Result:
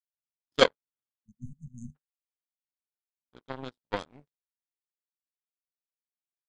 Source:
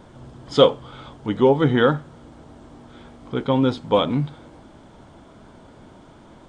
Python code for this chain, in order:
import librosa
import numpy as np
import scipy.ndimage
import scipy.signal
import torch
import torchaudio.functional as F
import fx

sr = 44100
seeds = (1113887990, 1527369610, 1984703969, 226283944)

y = fx.peak_eq(x, sr, hz=78.0, db=-6.5, octaves=1.5)
y = fx.power_curve(y, sr, exponent=3.0)
y = fx.spec_repair(y, sr, seeds[0], start_s=1.16, length_s=0.77, low_hz=240.0, high_hz=6100.0, source='before')